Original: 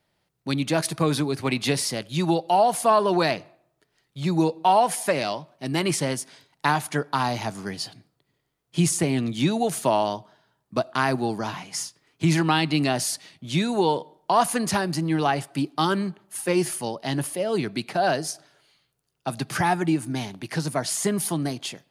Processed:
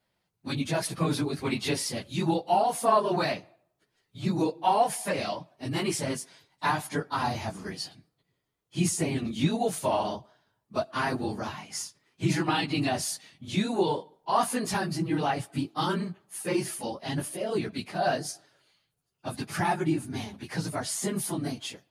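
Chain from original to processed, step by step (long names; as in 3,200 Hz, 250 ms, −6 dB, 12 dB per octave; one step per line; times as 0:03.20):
random phases in long frames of 50 ms
level −5 dB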